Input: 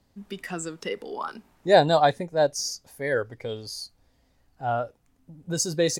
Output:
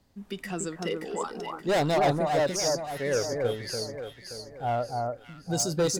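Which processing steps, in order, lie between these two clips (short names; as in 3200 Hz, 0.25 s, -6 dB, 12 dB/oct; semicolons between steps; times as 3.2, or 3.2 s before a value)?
dynamic EQ 1600 Hz, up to -6 dB, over -40 dBFS, Q 1.2; hard clip -21.5 dBFS, distortion -7 dB; echo with dull and thin repeats by turns 0.288 s, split 1500 Hz, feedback 63%, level -2.5 dB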